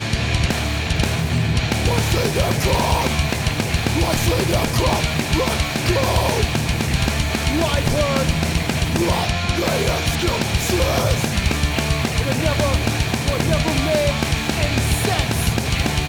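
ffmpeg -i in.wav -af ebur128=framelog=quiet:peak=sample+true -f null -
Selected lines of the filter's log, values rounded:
Integrated loudness:
  I:         -19.3 LUFS
  Threshold: -29.3 LUFS
Loudness range:
  LRA:         0.5 LU
  Threshold: -39.2 LUFS
  LRA low:   -19.4 LUFS
  LRA high:  -18.9 LUFS
Sample peak:
  Peak:       -6.1 dBFS
True peak:
  Peak:       -6.1 dBFS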